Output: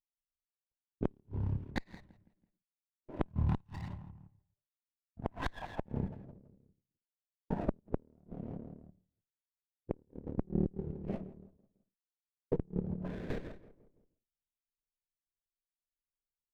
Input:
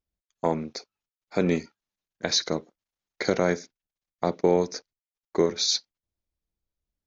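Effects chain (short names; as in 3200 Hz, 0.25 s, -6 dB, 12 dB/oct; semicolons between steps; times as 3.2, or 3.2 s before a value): half-wave gain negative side -7 dB; level quantiser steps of 13 dB; gate with hold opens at -56 dBFS; speed mistake 78 rpm record played at 33 rpm; feedback echo 0.165 s, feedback 49%, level -20 dB; dynamic EQ 390 Hz, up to +3 dB, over -43 dBFS, Q 3.7; low-pass sweep 5500 Hz -> 490 Hz, 3.02–6.79; low shelf 130 Hz +6 dB; compressor 4:1, threshold -35 dBFS, peak gain reduction 16 dB; low-pass opened by the level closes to 430 Hz, open at -34 dBFS; flipped gate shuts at -25 dBFS, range -34 dB; running maximum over 9 samples; gain +7 dB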